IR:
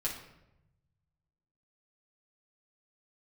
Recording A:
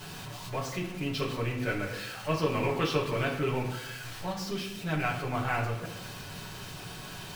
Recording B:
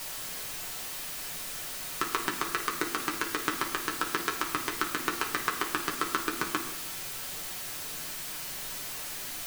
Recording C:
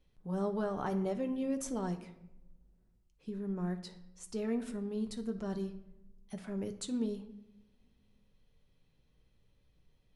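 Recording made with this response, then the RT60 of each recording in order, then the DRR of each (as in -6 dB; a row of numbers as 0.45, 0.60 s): A; 0.90, 0.90, 0.95 s; -5.5, 0.0, 6.0 dB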